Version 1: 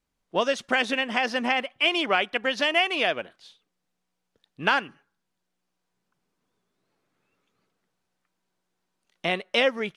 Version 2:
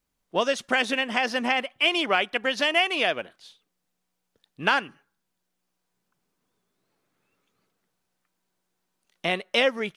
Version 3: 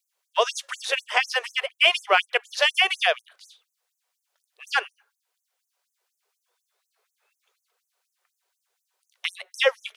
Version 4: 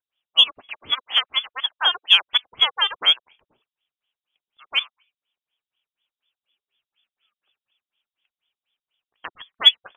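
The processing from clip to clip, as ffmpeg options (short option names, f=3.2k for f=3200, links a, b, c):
-af "highshelf=f=9.5k:g=9"
-af "afftfilt=real='re*gte(b*sr/1024,350*pow(6100/350,0.5+0.5*sin(2*PI*4.1*pts/sr)))':imag='im*gte(b*sr/1024,350*pow(6100/350,0.5+0.5*sin(2*PI*4.1*pts/sr)))':win_size=1024:overlap=0.75,volume=4.5dB"
-af "lowpass=f=3.3k:t=q:w=0.5098,lowpass=f=3.3k:t=q:w=0.6013,lowpass=f=3.3k:t=q:w=0.9,lowpass=f=3.3k:t=q:w=2.563,afreqshift=-3900,aexciter=amount=8:drive=2.7:freq=2.9k,volume=-5.5dB"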